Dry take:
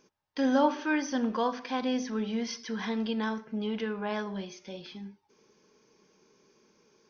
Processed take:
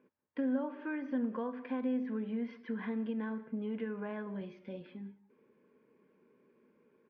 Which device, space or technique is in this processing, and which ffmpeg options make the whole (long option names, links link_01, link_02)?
bass amplifier: -filter_complex "[0:a]acompressor=threshold=-32dB:ratio=4,highpass=69,equalizer=frequency=250:width_type=q:width=4:gain=8,equalizer=frequency=510:width_type=q:width=4:gain=5,equalizer=frequency=800:width_type=q:width=4:gain=-6,lowpass=frequency=2300:width=0.5412,lowpass=frequency=2300:width=1.3066,bandreject=frequency=1300:width=17,asettb=1/sr,asplit=3[link_01][link_02][link_03];[link_01]atrim=end=4.414[link_04];[link_02]atrim=start=4.41:end=4.83,asetpts=PTS-STARTPTS,afade=type=in:duration=0.004:curve=qsin,afade=type=out:start_time=0.416:duration=0.004:curve=qsin,bass=frequency=250:gain=4,treble=frequency=4000:gain=10[link_05];[link_03]atrim=start=4.826[link_06];[link_04][link_05]acrossfade=duration=0.004:curve1=hsin:curve2=qsin[link_07];[link_07][link_06]acrossfade=duration=0.004:curve1=qsin:curve2=hsin,aecho=1:1:191:0.0794,volume=-5dB"